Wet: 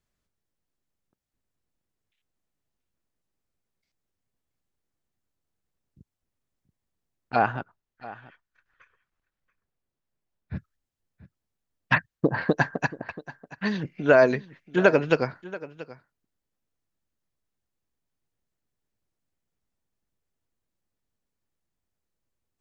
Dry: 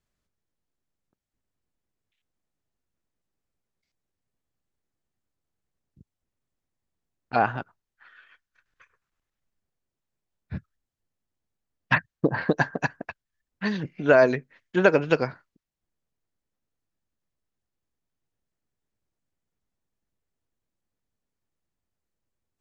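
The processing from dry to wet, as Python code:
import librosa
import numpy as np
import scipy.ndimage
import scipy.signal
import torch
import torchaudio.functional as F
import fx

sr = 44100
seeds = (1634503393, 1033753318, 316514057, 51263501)

y = fx.high_shelf(x, sr, hz=4500.0, db=-8.5, at=(7.57, 10.56))
y = y + 10.0 ** (-18.0 / 20.0) * np.pad(y, (int(682 * sr / 1000.0), 0))[:len(y)]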